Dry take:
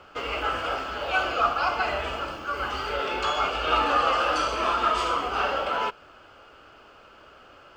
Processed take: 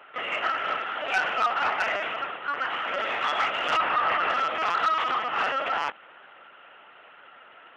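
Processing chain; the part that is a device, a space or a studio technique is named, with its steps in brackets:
talking toy (linear-prediction vocoder at 8 kHz pitch kept; high-pass filter 410 Hz 12 dB per octave; parametric band 1,900 Hz +9 dB 0.51 octaves; soft clipping −16.5 dBFS, distortion −16 dB)
0:03.77–0:04.30: Chebyshev low-pass filter 2,600 Hz, order 2

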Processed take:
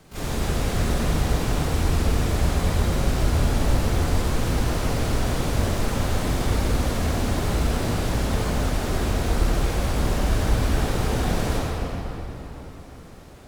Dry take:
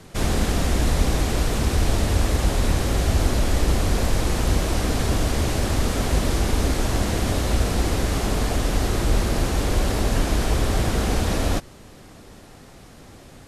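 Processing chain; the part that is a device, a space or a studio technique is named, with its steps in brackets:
shimmer-style reverb (pitch-shifted copies added +12 semitones −7 dB; convolution reverb RT60 4.0 s, pre-delay 40 ms, DRR −4 dB)
level −8 dB

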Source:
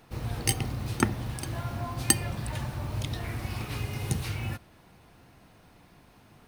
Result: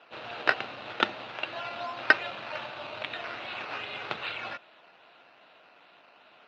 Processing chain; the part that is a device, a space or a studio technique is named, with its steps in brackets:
circuit-bent sampling toy (sample-and-hold swept by an LFO 10×, swing 60% 2.5 Hz; loudspeaker in its box 520–4,000 Hz, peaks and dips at 620 Hz +6 dB, 1,400 Hz +6 dB, 2,700 Hz +9 dB, 3,900 Hz +7 dB)
level +1 dB

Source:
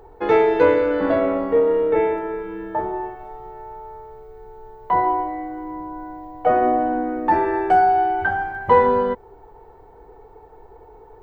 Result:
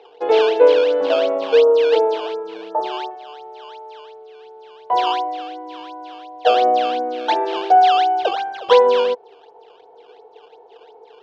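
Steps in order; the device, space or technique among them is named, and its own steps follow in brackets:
0:01.42–0:03.11: high shelf with overshoot 1,600 Hz −7.5 dB, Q 3
circuit-bent sampling toy (sample-and-hold swept by an LFO 13×, swing 160% 2.8 Hz; loudspeaker in its box 440–4,000 Hz, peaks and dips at 480 Hz +8 dB, 700 Hz +6 dB, 1,300 Hz −5 dB, 1,900 Hz −9 dB, 3,000 Hz +4 dB)
level −1 dB

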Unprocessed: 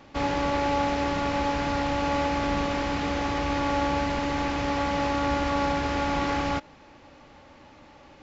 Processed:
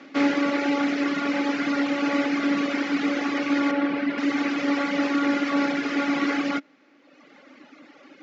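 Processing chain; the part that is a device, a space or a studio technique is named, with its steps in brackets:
reverb reduction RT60 1.4 s
0:03.71–0:04.18: high-frequency loss of the air 230 metres
television speaker (loudspeaker in its box 210–6,900 Hz, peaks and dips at 280 Hz +9 dB, 900 Hz −9 dB, 1,400 Hz +5 dB, 2,100 Hz +6 dB)
level +3.5 dB

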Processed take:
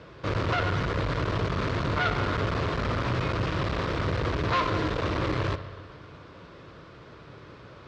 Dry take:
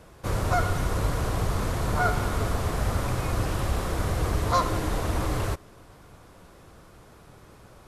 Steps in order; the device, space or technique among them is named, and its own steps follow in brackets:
analogue delay pedal into a guitar amplifier (bucket-brigade delay 62 ms, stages 2,048, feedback 78%, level −19 dB; tube saturation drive 28 dB, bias 0.5; loudspeaker in its box 77–4,500 Hz, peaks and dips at 77 Hz −5 dB, 210 Hz −5 dB, 770 Hz −9 dB)
level +8 dB

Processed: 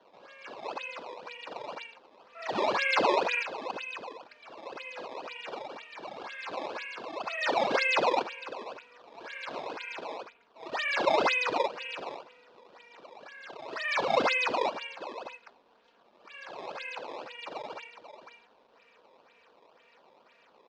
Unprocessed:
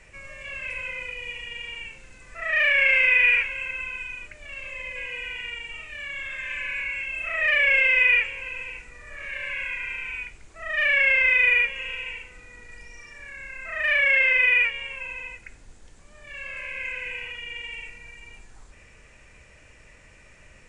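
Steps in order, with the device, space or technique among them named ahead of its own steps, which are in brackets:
0:10.18–0:10.88: Chebyshev low-pass filter 3,300 Hz, order 3
comb filter 4.3 ms, depth 87%
circuit-bent sampling toy (sample-and-hold swept by an LFO 17×, swing 160% 2 Hz; loudspeaker in its box 410–4,500 Hz, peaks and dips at 530 Hz +3 dB, 970 Hz +4 dB, 2,000 Hz −7 dB)
level −7.5 dB

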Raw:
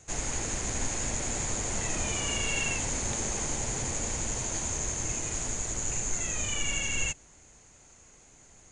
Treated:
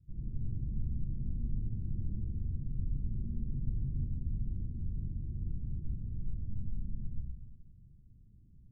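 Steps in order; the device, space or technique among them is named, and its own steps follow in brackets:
club heard from the street (brickwall limiter −24.5 dBFS, peak gain reduction 8 dB; low-pass filter 190 Hz 24 dB per octave; convolution reverb RT60 1.3 s, pre-delay 43 ms, DRR −4.5 dB)
level −1.5 dB

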